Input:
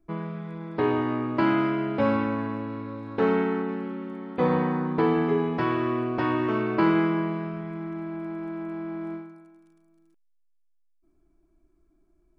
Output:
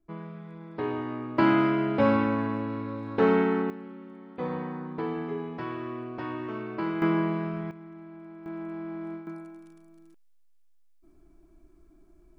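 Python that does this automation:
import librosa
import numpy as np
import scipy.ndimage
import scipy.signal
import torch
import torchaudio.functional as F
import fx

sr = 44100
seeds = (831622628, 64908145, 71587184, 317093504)

y = fx.gain(x, sr, db=fx.steps((0.0, -7.0), (1.38, 1.0), (3.7, -9.5), (7.02, 0.5), (7.71, -11.5), (8.46, -3.0), (9.27, 8.0)))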